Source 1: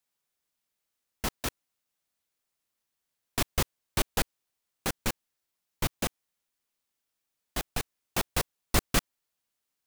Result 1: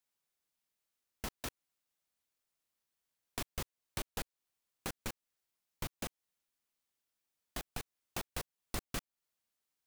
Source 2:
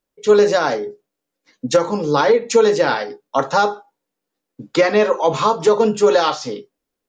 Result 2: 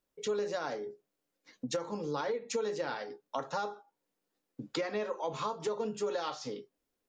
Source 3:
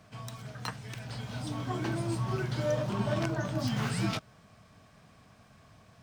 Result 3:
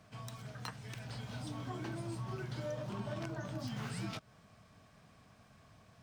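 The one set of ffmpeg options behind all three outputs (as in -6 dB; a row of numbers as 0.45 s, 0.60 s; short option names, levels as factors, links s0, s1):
-af "acompressor=threshold=0.0158:ratio=2.5,volume=0.631"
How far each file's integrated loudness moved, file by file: -12.0 LU, -20.0 LU, -9.0 LU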